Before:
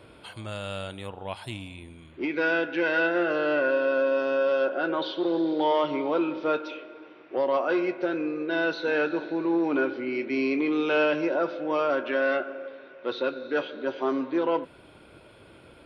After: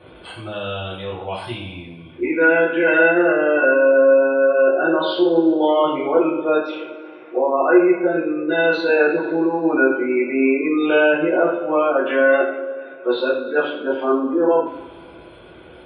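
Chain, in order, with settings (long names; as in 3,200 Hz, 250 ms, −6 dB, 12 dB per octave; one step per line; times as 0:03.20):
gate on every frequency bin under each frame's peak −25 dB strong
coupled-rooms reverb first 0.54 s, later 2.1 s, from −19 dB, DRR −9 dB
level −1 dB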